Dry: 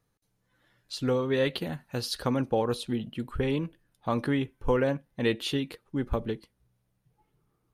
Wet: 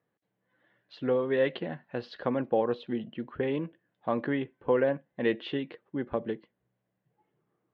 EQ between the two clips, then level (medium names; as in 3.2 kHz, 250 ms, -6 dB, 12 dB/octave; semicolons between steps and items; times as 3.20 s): cabinet simulation 240–2600 Hz, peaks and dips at 270 Hz -4 dB, 430 Hz -3 dB, 890 Hz -5 dB, 1.3 kHz -8 dB, 2.4 kHz -7 dB; +3.0 dB